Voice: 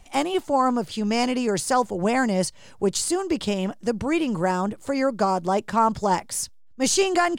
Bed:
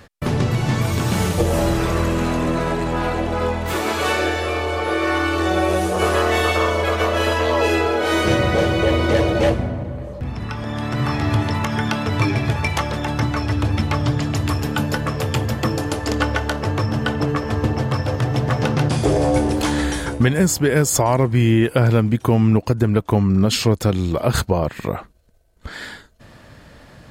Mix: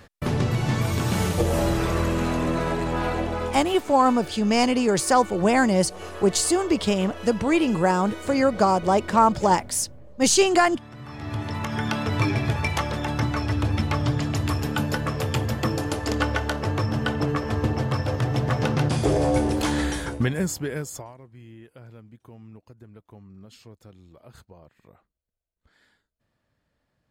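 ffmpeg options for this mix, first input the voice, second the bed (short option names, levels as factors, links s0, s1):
-filter_complex "[0:a]adelay=3400,volume=1.33[s0];[1:a]volume=3.76,afade=t=out:st=3.21:d=0.59:silence=0.16788,afade=t=in:st=11.06:d=0.92:silence=0.16788,afade=t=out:st=19.81:d=1.33:silence=0.0473151[s1];[s0][s1]amix=inputs=2:normalize=0"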